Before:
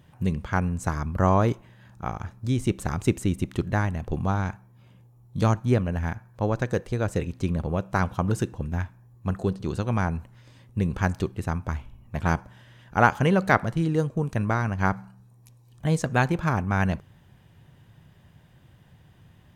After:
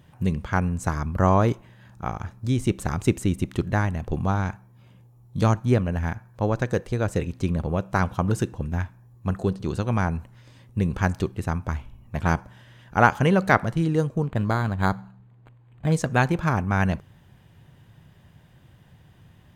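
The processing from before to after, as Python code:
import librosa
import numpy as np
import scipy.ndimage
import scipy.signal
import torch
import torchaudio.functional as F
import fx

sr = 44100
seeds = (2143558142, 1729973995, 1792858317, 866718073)

y = fx.resample_linear(x, sr, factor=8, at=(14.22, 15.92))
y = F.gain(torch.from_numpy(y), 1.5).numpy()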